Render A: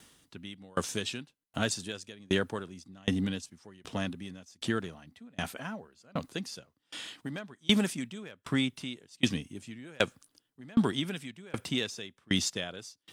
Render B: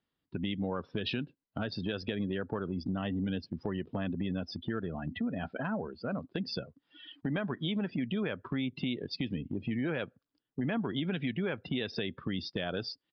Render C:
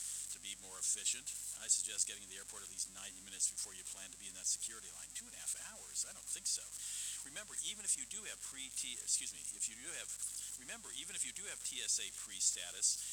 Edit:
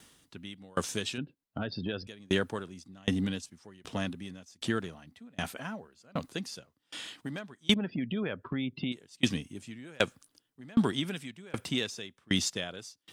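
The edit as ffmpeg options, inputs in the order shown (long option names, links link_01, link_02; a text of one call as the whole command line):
ffmpeg -i take0.wav -i take1.wav -filter_complex "[1:a]asplit=2[link_01][link_02];[0:a]asplit=3[link_03][link_04][link_05];[link_03]atrim=end=1.182[link_06];[link_01]atrim=start=1.178:end=2.072[link_07];[link_04]atrim=start=2.068:end=7.742[link_08];[link_02]atrim=start=7.738:end=8.922[link_09];[link_05]atrim=start=8.918[link_10];[link_06][link_07]acrossfade=duration=0.004:curve1=hsin:curve2=hsin[link_11];[link_11][link_08]acrossfade=duration=0.004:curve1=hsin:curve2=hsin[link_12];[link_12][link_09]acrossfade=duration=0.004:curve1=hsin:curve2=hsin[link_13];[link_13][link_10]acrossfade=duration=0.004:curve1=hsin:curve2=hsin" out.wav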